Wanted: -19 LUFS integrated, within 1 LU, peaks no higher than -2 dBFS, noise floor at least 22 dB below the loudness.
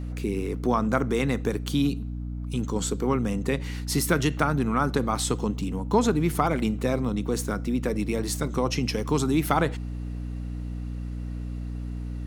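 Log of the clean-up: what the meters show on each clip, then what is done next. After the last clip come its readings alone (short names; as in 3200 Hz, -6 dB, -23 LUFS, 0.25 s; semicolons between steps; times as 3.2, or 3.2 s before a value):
hum 60 Hz; harmonics up to 300 Hz; hum level -30 dBFS; loudness -27.0 LUFS; peak -7.5 dBFS; loudness target -19.0 LUFS
-> notches 60/120/180/240/300 Hz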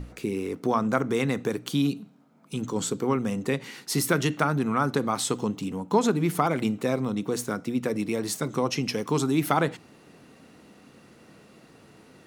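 hum none; loudness -27.0 LUFS; peak -8.0 dBFS; loudness target -19.0 LUFS
-> gain +8 dB; limiter -2 dBFS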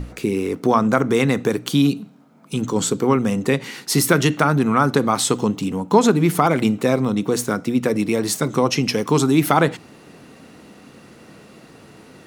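loudness -19.0 LUFS; peak -2.0 dBFS; noise floor -47 dBFS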